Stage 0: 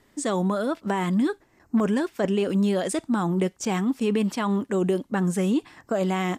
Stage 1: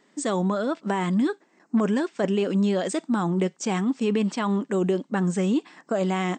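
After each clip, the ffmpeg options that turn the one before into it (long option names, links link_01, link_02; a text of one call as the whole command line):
ffmpeg -i in.wav -af "afftfilt=real='re*between(b*sr/4096,160,8600)':imag='im*between(b*sr/4096,160,8600)':win_size=4096:overlap=0.75" out.wav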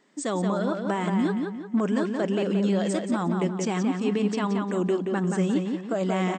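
ffmpeg -i in.wav -filter_complex "[0:a]asplit=2[link_01][link_02];[link_02]adelay=176,lowpass=frequency=3800:poles=1,volume=-4dB,asplit=2[link_03][link_04];[link_04]adelay=176,lowpass=frequency=3800:poles=1,volume=0.42,asplit=2[link_05][link_06];[link_06]adelay=176,lowpass=frequency=3800:poles=1,volume=0.42,asplit=2[link_07][link_08];[link_08]adelay=176,lowpass=frequency=3800:poles=1,volume=0.42,asplit=2[link_09][link_10];[link_10]adelay=176,lowpass=frequency=3800:poles=1,volume=0.42[link_11];[link_01][link_03][link_05][link_07][link_09][link_11]amix=inputs=6:normalize=0,volume=-2.5dB" out.wav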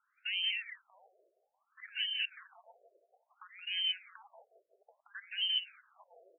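ffmpeg -i in.wav -af "lowpass=frequency=2800:width_type=q:width=0.5098,lowpass=frequency=2800:width_type=q:width=0.6013,lowpass=frequency=2800:width_type=q:width=0.9,lowpass=frequency=2800:width_type=q:width=2.563,afreqshift=-3300,afftfilt=real='re*between(b*sr/1024,480*pow(2300/480,0.5+0.5*sin(2*PI*0.59*pts/sr))/1.41,480*pow(2300/480,0.5+0.5*sin(2*PI*0.59*pts/sr))*1.41)':imag='im*between(b*sr/1024,480*pow(2300/480,0.5+0.5*sin(2*PI*0.59*pts/sr))/1.41,480*pow(2300/480,0.5+0.5*sin(2*PI*0.59*pts/sr))*1.41)':win_size=1024:overlap=0.75,volume=-8.5dB" out.wav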